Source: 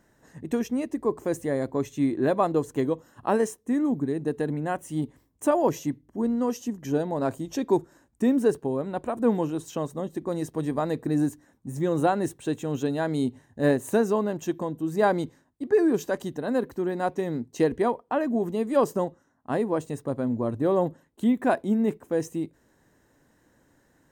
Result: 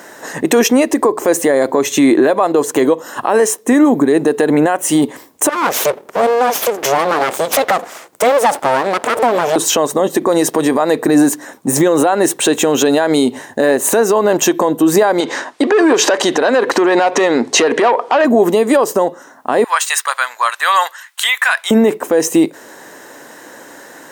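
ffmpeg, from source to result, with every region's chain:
ffmpeg -i in.wav -filter_complex "[0:a]asettb=1/sr,asplit=3[link_01][link_02][link_03];[link_01]atrim=end=5.494[link_04];[link_02]atrim=start=5.49:end=9.56,asetpts=PTS-STARTPTS,afade=type=in:duration=0.004:curve=qsin,afade=type=out:start_time=4.066:duration=0.004:curve=qsin,acompressor=threshold=-36dB:ratio=2.5:attack=3.2:release=140:knee=1:detection=peak,aeval=exprs='abs(val(0))':channel_layout=same[link_05];[link_03]atrim=start=9.556[link_06];[link_04][link_05]acrossfade=duration=0.004:curve1=hsin:curve2=qsin[link_07];[link_07][link_06]acrossfade=duration=0.004:curve1=qsin:curve2=hsin,asettb=1/sr,asplit=3[link_08][link_09][link_10];[link_08]atrim=end=15.204[link_11];[link_09]atrim=start=15.2:end=18.25,asetpts=PTS-STARTPTS,afade=type=in:duration=0.004:curve=qsin,afade=type=out:start_time=3.046:duration=0.004:curve=qsin,acompressor=threshold=-38dB:ratio=2.5:attack=3.2:release=140:knee=1:detection=peak,asplit=2[link_12][link_13];[link_13]highpass=frequency=720:poles=1,volume=21dB,asoftclip=type=tanh:threshold=-18dB[link_14];[link_12][link_14]amix=inputs=2:normalize=0,lowpass=frequency=5100:poles=1,volume=-6dB,lowpass=7300[link_15];[link_10]atrim=start=18.246[link_16];[link_11][link_15]acrossfade=duration=0.004:curve1=hsin:curve2=qsin[link_17];[link_17][link_16]acrossfade=duration=0.004:curve1=qsin:curve2=hsin,asettb=1/sr,asplit=3[link_18][link_19][link_20];[link_18]atrim=end=19.644[link_21];[link_19]atrim=start=19.64:end=21.71,asetpts=PTS-STARTPTS,afade=type=in:duration=0.004:curve=qsin,afade=type=out:start_time=2.066:duration=0.004:curve=qsin,highpass=frequency=1300:width=0.5412,highpass=frequency=1300:width=1.3066,equalizer=frequency=2300:width=0.33:gain=4[link_22];[link_20]atrim=start=21.706[link_23];[link_21][link_22]acrossfade=duration=0.004:curve1=hsin:curve2=qsin[link_24];[link_24][link_23]acrossfade=duration=0.004:curve1=qsin:curve2=hsin,highpass=440,acompressor=threshold=-34dB:ratio=6,alimiter=level_in=32.5dB:limit=-1dB:release=50:level=0:latency=1,volume=-2dB" out.wav

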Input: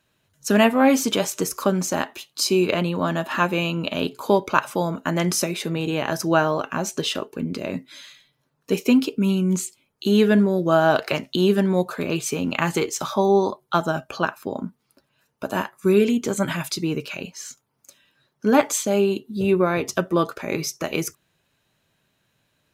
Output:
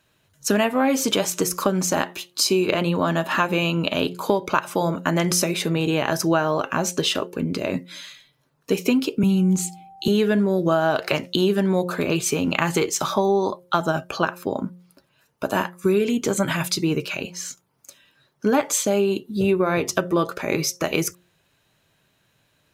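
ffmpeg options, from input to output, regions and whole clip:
ffmpeg -i in.wav -filter_complex "[0:a]asettb=1/sr,asplit=3[link_01][link_02][link_03];[link_01]atrim=end=9.234[link_04];[link_02]atrim=start=9.23:end=10.08,asetpts=PTS-STARTPTS,afade=type=in:duration=0.004:curve=qsin,afade=type=out:start_time=0.846:duration=0.004:curve=qsin,lowshelf=frequency=190:gain=8,acrossover=split=320|3000[link_05][link_06][link_07];[link_06]acompressor=threshold=-36dB:ratio=2:attack=3.2:release=140:knee=2.83:detection=peak[link_08];[link_05][link_08][link_07]amix=inputs=3:normalize=0,aeval=exprs='val(0)+0.00447*sin(2*PI*780*n/s)':channel_layout=same[link_09];[link_03]atrim=start=10.076[link_10];[link_04][link_09]acrossfade=duration=0.004:curve1=hsin:curve2=qsin[link_11];[link_11][link_10]acrossfade=duration=0.004:curve1=qsin:curve2=hsin,equalizer=frequency=230:width_type=o:width=0.26:gain=-4,bandreject=frequency=177.8:width_type=h:width=4,bandreject=frequency=355.6:width_type=h:width=4,bandreject=frequency=533.4:width_type=h:width=4,acompressor=threshold=-20dB:ratio=5,volume=4dB" out.wav

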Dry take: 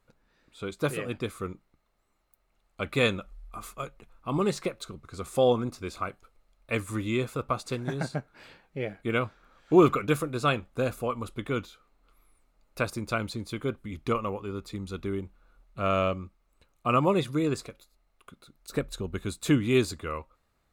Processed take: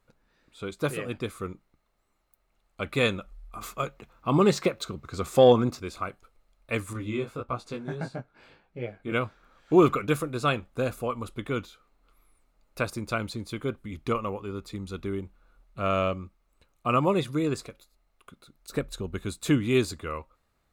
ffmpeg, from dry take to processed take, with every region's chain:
ffmpeg -i in.wav -filter_complex "[0:a]asettb=1/sr,asplit=3[link_01][link_02][link_03];[link_01]atrim=end=3.614[link_04];[link_02]atrim=start=3.61:end=5.8,asetpts=PTS-STARTPTS,afade=type=in:duration=0.004:curve=qsin,afade=type=out:start_time=2.186:duration=0.004:curve=qsin,highpass=51,equalizer=frequency=9800:width=3:gain=-9.5,acontrast=49[link_05];[link_03]atrim=start=5.796[link_06];[link_04][link_05]acrossfade=duration=0.004:curve1=hsin:curve2=qsin[link_07];[link_07][link_06]acrossfade=duration=0.004:curve1=qsin:curve2=hsin,asettb=1/sr,asplit=3[link_08][link_09][link_10];[link_08]atrim=end=6.934[link_11];[link_09]atrim=start=6.93:end=9.12,asetpts=PTS-STARTPTS,afade=type=in:duration=0.004:curve=qsin,afade=type=out:start_time=2.186:duration=0.004:curve=qsin,aemphasis=mode=reproduction:type=cd,bandreject=frequency=1900:width=15,flanger=delay=16.5:depth=4.4:speed=1.6[link_12];[link_10]atrim=start=9.116[link_13];[link_11][link_12]acrossfade=duration=0.004:curve1=hsin:curve2=qsin[link_14];[link_14][link_13]acrossfade=duration=0.004:curve1=qsin:curve2=hsin" out.wav

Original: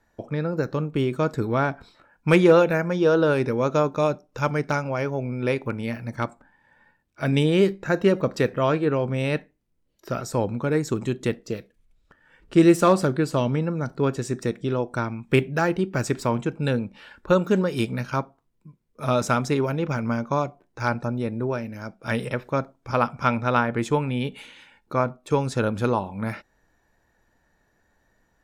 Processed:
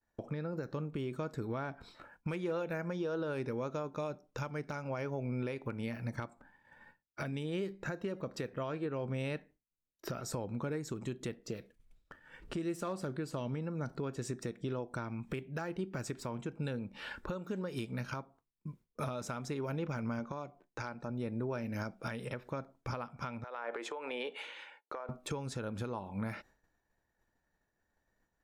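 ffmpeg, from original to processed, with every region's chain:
ffmpeg -i in.wav -filter_complex "[0:a]asettb=1/sr,asplit=3[link_01][link_02][link_03];[link_01]atrim=end=20.194[link_04];[link_02]atrim=start=20.19:end=21.1,asetpts=PTS-STARTPTS,afade=type=in:duration=0.004:curve=qsin,afade=type=out:start_time=0.906:duration=0.004:curve=qsin,lowpass=8700,equalizer=frequency=100:width_type=o:width=0.4:gain=-13[link_05];[link_03]atrim=start=21.096[link_06];[link_04][link_05]acrossfade=duration=0.004:curve1=hsin:curve2=qsin[link_07];[link_07][link_06]acrossfade=duration=0.004:curve1=qsin:curve2=hsin,asettb=1/sr,asplit=3[link_08][link_09][link_10];[link_08]atrim=end=23.444[link_11];[link_09]atrim=start=23.44:end=25.09,asetpts=PTS-STARTPTS,afade=type=in:duration=0.004:curve=qsin,afade=type=out:start_time=1.646:duration=0.004:curve=qsin,highpass=frequency=430:width=0.5412,highpass=frequency=430:width=1.3066,aemphasis=mode=reproduction:type=75kf,acompressor=threshold=-34dB:ratio=16:attack=3.2:release=140:knee=1:detection=peak[link_12];[link_10]atrim=start=25.086[link_13];[link_11][link_12]acrossfade=duration=0.004:curve1=hsin:curve2=qsin[link_14];[link_14][link_13]acrossfade=duration=0.004:curve1=qsin:curve2=hsin,acompressor=threshold=-35dB:ratio=5,agate=range=-33dB:threshold=-54dB:ratio=3:detection=peak,alimiter=level_in=7dB:limit=-24dB:level=0:latency=1:release=404,volume=-7dB,volume=3dB" out.wav

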